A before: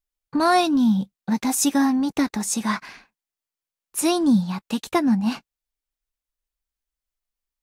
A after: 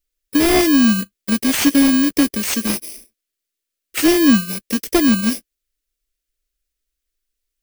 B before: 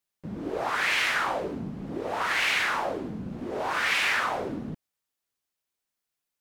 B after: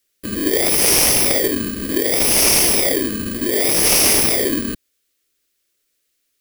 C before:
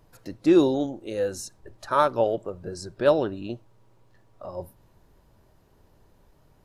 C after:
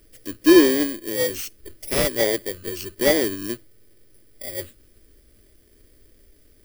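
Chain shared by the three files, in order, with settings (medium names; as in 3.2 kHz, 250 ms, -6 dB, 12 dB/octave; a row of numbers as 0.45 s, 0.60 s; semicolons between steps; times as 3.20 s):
bit-reversed sample order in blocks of 32 samples; static phaser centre 360 Hz, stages 4; slew-rate limiter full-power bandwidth 360 Hz; peak normalisation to -2 dBFS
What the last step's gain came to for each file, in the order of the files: +8.5 dB, +16.0 dB, +6.5 dB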